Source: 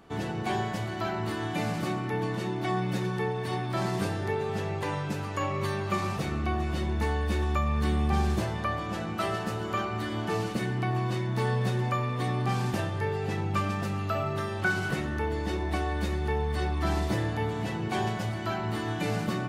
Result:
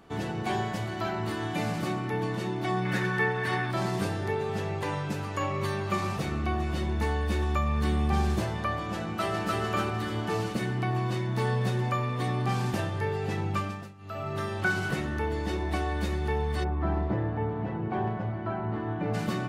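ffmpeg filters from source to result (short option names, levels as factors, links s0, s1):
-filter_complex "[0:a]asettb=1/sr,asplit=3[s0][s1][s2];[s0]atrim=end=2.854[s3];[s1]atrim=start=2.85:end=3.71,asetpts=PTS-STARTPTS,afade=t=in:d=0.004:c=qsin,afade=t=out:st=0.856:d=0.004:c=qsin,equalizer=f=1700:w=1.4:g=12.5[s4];[s2]atrim=start=3.706[s5];[s3][s4]acrossfade=d=0.004:c1=hsin:c2=qsin[s6];[s6][s5]acrossfade=d=0.004:c1=qsin:c2=hsin,asplit=2[s7][s8];[s8]afade=t=in:st=9.04:d=0.01,afade=t=out:st=9.6:d=0.01,aecho=0:1:300|600|900|1200|1500:0.841395|0.336558|0.134623|0.0538493|0.0215397[s9];[s7][s9]amix=inputs=2:normalize=0,asplit=3[s10][s11][s12];[s10]afade=t=out:st=16.63:d=0.02[s13];[s11]lowpass=1300,afade=t=in:st=16.63:d=0.02,afade=t=out:st=19.13:d=0.02[s14];[s12]afade=t=in:st=19.13:d=0.02[s15];[s13][s14][s15]amix=inputs=3:normalize=0,asplit=3[s16][s17][s18];[s16]atrim=end=13.94,asetpts=PTS-STARTPTS,afade=t=out:st=13.49:d=0.45:silence=0.0891251[s19];[s17]atrim=start=13.94:end=13.98,asetpts=PTS-STARTPTS,volume=0.0891[s20];[s18]atrim=start=13.98,asetpts=PTS-STARTPTS,afade=t=in:d=0.45:silence=0.0891251[s21];[s19][s20][s21]concat=n=3:v=0:a=1"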